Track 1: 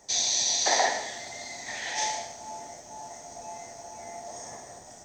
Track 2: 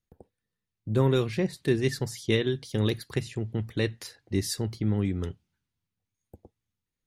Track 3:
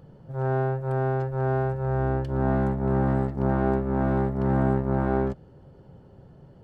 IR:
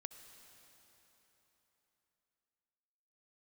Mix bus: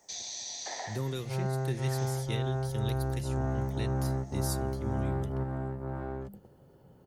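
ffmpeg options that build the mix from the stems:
-filter_complex "[0:a]volume=-7.5dB[a];[1:a]aemphasis=mode=production:type=75fm,volume=-4.5dB,asplit=3[b][c][d];[c]volume=-17dB[e];[2:a]highshelf=f=8k:g=8.5,bandreject=f=50:t=h:w=6,bandreject=f=100:t=h:w=6,bandreject=f=150:t=h:w=6,bandreject=f=200:t=h:w=6,adelay=950,volume=0.5dB[f];[d]apad=whole_len=334310[g];[f][g]sidechaingate=range=-6dB:threshold=-54dB:ratio=16:detection=peak[h];[3:a]atrim=start_sample=2205[i];[e][i]afir=irnorm=-1:irlink=0[j];[a][b][h][j]amix=inputs=4:normalize=0,lowshelf=f=99:g=-7.5,acrossover=split=150[k][l];[l]acompressor=threshold=-42dB:ratio=2[m];[k][m]amix=inputs=2:normalize=0"

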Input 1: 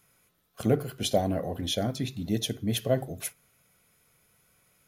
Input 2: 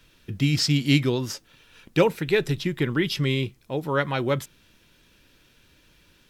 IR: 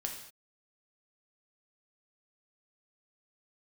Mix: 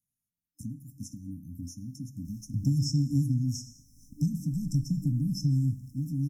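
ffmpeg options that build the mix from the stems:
-filter_complex "[0:a]agate=range=-23dB:threshold=-52dB:ratio=16:detection=peak,acompressor=threshold=-37dB:ratio=5,volume=1dB,asplit=2[a][b];[b]volume=-15dB[c];[1:a]adelay=2250,volume=-0.5dB,asplit=2[d][e];[e]volume=-5dB[f];[2:a]atrim=start_sample=2205[g];[c][f]amix=inputs=2:normalize=0[h];[h][g]afir=irnorm=-1:irlink=0[i];[a][d][i]amix=inputs=3:normalize=0,afftfilt=real='re*(1-between(b*sr/4096,300,5200))':imag='im*(1-between(b*sr/4096,300,5200))':win_size=4096:overlap=0.75,acrossover=split=170|7600[j][k][l];[j]acompressor=threshold=-24dB:ratio=4[m];[k]acompressor=threshold=-34dB:ratio=4[n];[l]acompressor=threshold=-58dB:ratio=4[o];[m][n][o]amix=inputs=3:normalize=0"

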